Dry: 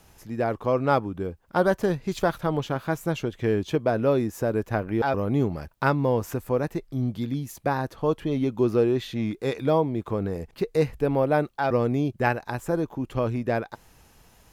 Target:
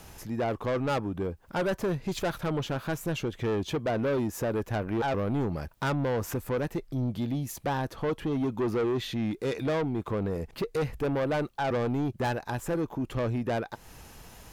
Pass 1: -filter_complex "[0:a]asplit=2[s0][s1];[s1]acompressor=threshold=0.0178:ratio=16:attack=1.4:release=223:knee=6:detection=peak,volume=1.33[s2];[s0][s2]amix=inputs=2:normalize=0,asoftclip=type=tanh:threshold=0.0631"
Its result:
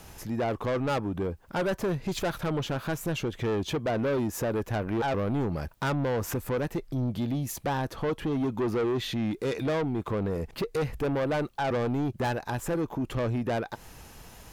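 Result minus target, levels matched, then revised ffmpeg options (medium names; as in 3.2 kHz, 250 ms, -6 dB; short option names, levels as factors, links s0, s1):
compression: peak gain reduction -11 dB
-filter_complex "[0:a]asplit=2[s0][s1];[s1]acompressor=threshold=0.00473:ratio=16:attack=1.4:release=223:knee=6:detection=peak,volume=1.33[s2];[s0][s2]amix=inputs=2:normalize=0,asoftclip=type=tanh:threshold=0.0631"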